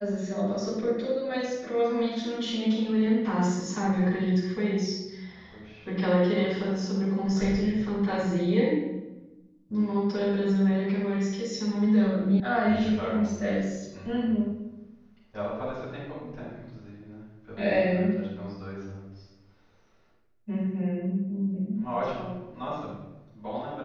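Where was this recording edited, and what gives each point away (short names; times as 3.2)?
12.4 sound cut off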